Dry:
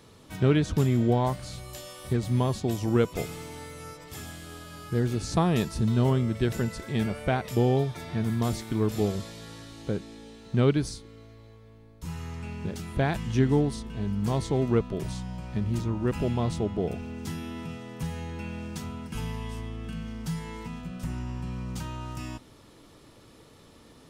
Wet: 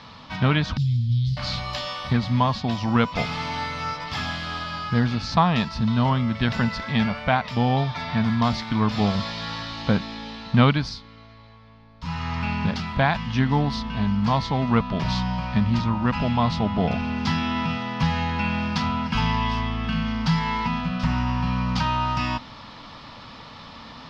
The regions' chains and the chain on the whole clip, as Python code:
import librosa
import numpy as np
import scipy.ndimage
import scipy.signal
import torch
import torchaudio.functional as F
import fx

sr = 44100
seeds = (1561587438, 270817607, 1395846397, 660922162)

y = fx.chain(x, sr, fx.ellip_bandstop(low_hz=130.0, high_hz=4200.0, order=3, stop_db=70),
    fx.high_shelf(hz=4000.0, db=-6.5), at=(0.77, 1.37))
y = fx.curve_eq(y, sr, hz=(110.0, 240.0, 370.0, 560.0, 990.0, 1500.0, 5000.0, 8700.0), db=(0, 4, -12, 1, 12, 8, 11, -19))
y = fx.rider(y, sr, range_db=4, speed_s=0.5)
y = fx.high_shelf(y, sr, hz=4100.0, db=-6.5)
y = y * librosa.db_to_amplitude(4.5)